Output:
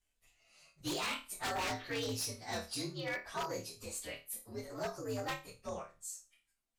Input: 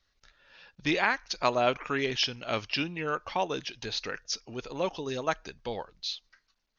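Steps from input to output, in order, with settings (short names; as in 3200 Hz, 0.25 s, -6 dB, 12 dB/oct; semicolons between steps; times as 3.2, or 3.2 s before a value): inharmonic rescaling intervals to 123%; flutter echo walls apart 4.6 m, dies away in 0.28 s; wavefolder -26 dBFS; gain -5 dB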